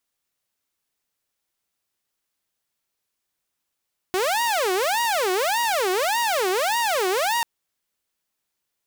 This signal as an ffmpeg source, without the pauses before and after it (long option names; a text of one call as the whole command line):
ffmpeg -f lavfi -i "aevalsrc='0.133*(2*mod((657*t-293/(2*PI*1.7)*sin(2*PI*1.7*t)),1)-1)':duration=3.29:sample_rate=44100" out.wav